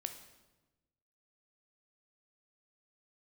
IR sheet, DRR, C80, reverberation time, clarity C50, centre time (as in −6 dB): 6.5 dB, 11.5 dB, 1.1 s, 9.5 dB, 15 ms